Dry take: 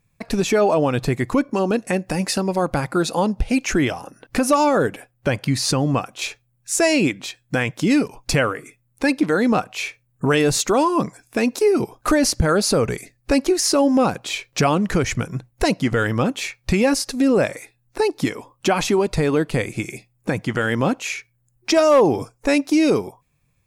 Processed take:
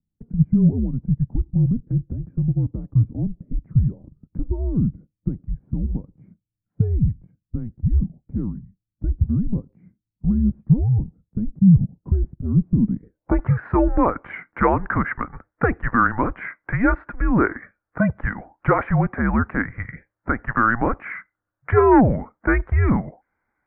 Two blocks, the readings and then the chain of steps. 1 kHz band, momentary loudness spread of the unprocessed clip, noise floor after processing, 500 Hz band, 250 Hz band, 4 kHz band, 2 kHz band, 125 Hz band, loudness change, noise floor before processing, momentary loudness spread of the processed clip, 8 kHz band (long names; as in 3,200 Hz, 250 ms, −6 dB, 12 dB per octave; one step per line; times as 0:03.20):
−1.5 dB, 10 LU, −84 dBFS, −7.5 dB, −1.5 dB, below −35 dB, −2.0 dB, +6.0 dB, −1.5 dB, −66 dBFS, 14 LU, below −40 dB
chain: single-sideband voice off tune −230 Hz 270–2,300 Hz
low-pass filter sweep 160 Hz → 1,500 Hz, 0:12.76–0:13.50